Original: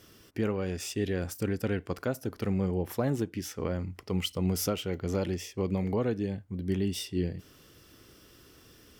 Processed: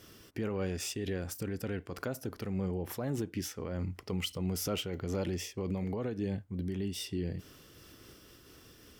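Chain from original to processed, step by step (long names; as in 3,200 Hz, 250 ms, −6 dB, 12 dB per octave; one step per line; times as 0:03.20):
brickwall limiter −26 dBFS, peak gain reduction 10 dB
amplitude modulation by smooth noise, depth 60%
level +4 dB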